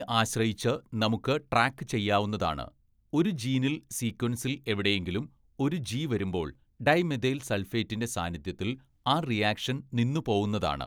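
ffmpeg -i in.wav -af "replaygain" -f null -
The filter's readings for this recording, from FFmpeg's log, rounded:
track_gain = +8.5 dB
track_peak = 0.247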